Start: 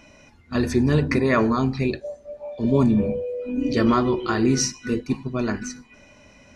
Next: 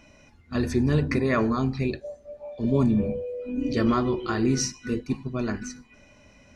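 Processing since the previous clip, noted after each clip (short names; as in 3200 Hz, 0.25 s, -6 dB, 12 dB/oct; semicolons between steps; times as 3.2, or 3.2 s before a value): low shelf 130 Hz +4.5 dB; notch 940 Hz, Q 26; gain -4.5 dB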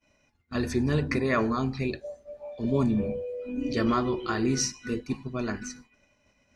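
expander -45 dBFS; low shelf 410 Hz -4.5 dB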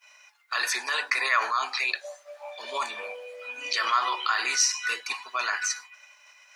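HPF 970 Hz 24 dB/oct; in parallel at +2 dB: negative-ratio compressor -42 dBFS, ratio -1; on the sum: gain +5.5 dB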